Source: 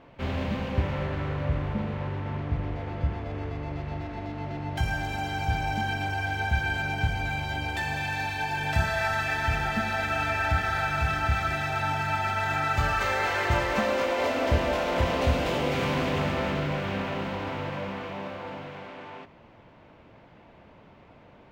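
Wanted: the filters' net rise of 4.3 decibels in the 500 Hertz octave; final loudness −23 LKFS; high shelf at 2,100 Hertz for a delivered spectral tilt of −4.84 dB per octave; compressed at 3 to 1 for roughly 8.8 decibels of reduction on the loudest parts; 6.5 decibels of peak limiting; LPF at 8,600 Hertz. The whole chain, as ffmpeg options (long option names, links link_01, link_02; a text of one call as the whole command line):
ffmpeg -i in.wav -af "lowpass=8600,equalizer=frequency=500:width_type=o:gain=4.5,highshelf=frequency=2100:gain=9,acompressor=threshold=-30dB:ratio=3,volume=10dB,alimiter=limit=-14.5dB:level=0:latency=1" out.wav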